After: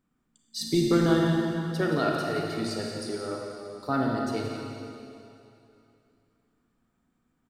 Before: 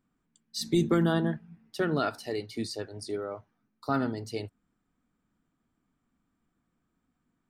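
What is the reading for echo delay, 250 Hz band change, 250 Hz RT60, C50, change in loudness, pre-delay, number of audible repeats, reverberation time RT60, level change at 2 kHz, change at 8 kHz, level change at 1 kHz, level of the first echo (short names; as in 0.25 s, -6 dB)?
0.172 s, +3.5 dB, 2.7 s, -0.5 dB, +3.0 dB, 27 ms, 1, 2.8 s, +3.5 dB, +3.5 dB, +3.5 dB, -9.5 dB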